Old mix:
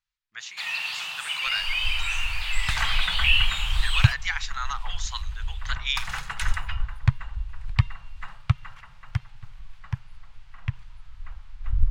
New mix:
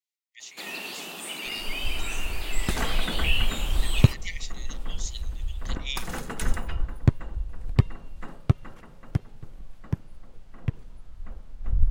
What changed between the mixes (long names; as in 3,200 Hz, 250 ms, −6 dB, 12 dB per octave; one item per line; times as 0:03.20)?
speech: add linear-phase brick-wall high-pass 1,800 Hz
master: remove drawn EQ curve 130 Hz 0 dB, 290 Hz −30 dB, 560 Hz −14 dB, 920 Hz +3 dB, 2,400 Hz +8 dB, 4,500 Hz +5 dB, 12,000 Hz −7 dB